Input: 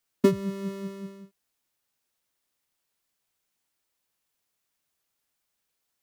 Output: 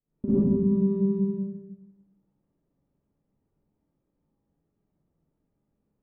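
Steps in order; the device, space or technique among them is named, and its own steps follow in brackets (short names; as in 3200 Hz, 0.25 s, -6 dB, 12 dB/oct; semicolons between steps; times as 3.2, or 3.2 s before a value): television next door (compressor 4:1, threshold -38 dBFS, peak gain reduction 19.5 dB; LPF 260 Hz 12 dB/oct; reverb RT60 0.50 s, pre-delay 50 ms, DRR -7 dB); Schroeder reverb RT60 0.99 s, DRR -9.5 dB; gain +6.5 dB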